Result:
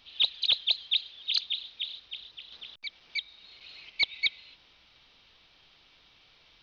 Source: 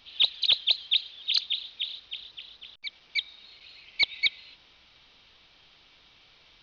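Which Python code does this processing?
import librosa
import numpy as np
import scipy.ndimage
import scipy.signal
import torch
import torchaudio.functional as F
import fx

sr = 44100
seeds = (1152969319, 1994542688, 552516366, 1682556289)

y = fx.band_squash(x, sr, depth_pct=40, at=(2.52, 3.9))
y = y * librosa.db_to_amplitude(-2.5)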